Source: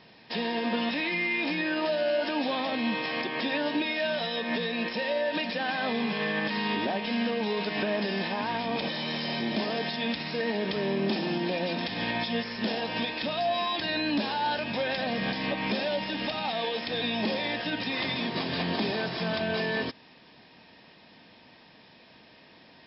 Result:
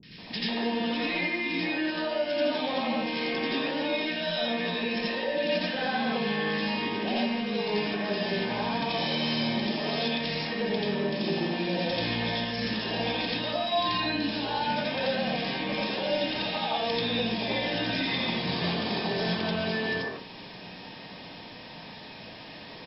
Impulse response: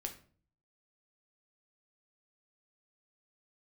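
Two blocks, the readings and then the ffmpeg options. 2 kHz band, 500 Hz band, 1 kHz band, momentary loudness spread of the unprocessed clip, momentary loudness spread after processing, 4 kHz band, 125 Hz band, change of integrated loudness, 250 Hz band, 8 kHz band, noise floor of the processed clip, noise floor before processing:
-0.5 dB, +0.5 dB, +0.5 dB, 3 LU, 14 LU, +2.0 dB, +2.5 dB, +0.5 dB, +0.5 dB, n/a, -44 dBFS, -55 dBFS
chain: -filter_complex "[0:a]acompressor=threshold=-37dB:ratio=6,acrossover=split=330|1700[a][b][c];[c]adelay=30[d];[b]adelay=180[e];[a][e][d]amix=inputs=3:normalize=0,asplit=2[f][g];[1:a]atrim=start_sample=2205,adelay=86[h];[g][h]afir=irnorm=-1:irlink=0,volume=5.5dB[i];[f][i]amix=inputs=2:normalize=0,volume=6.5dB"

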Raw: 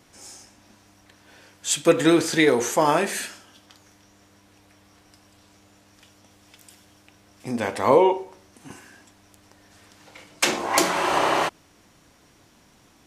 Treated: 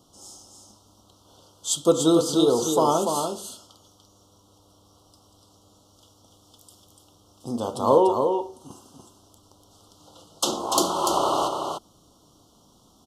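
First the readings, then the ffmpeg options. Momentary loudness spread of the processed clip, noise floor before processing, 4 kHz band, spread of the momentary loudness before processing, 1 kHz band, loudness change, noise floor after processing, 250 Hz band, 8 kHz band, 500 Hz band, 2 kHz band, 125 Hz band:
16 LU, -57 dBFS, -1.0 dB, 13 LU, -0.5 dB, -1.5 dB, -58 dBFS, -0.5 dB, -0.5 dB, -0.5 dB, under -20 dB, -0.5 dB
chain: -filter_complex "[0:a]asuperstop=centerf=2000:order=12:qfactor=1.2,asplit=2[a][b];[b]aecho=0:1:292:0.531[c];[a][c]amix=inputs=2:normalize=0,volume=-1.5dB"

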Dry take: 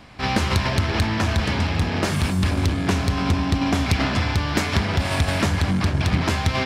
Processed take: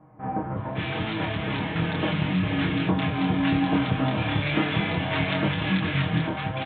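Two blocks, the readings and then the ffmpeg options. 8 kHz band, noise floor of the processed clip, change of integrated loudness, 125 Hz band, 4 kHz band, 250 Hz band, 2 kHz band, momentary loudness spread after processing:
under -40 dB, -33 dBFS, -4.0 dB, -5.5 dB, -5.0 dB, -1.0 dB, -3.0 dB, 6 LU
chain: -filter_complex "[0:a]highpass=93,aecho=1:1:6.4:0.78,dynaudnorm=f=460:g=7:m=11.5dB,flanger=delay=22.5:depth=6.7:speed=1,aresample=8000,aresample=44100,acrossover=split=1200[a][b];[b]adelay=560[c];[a][c]amix=inputs=2:normalize=0,volume=-3.5dB"

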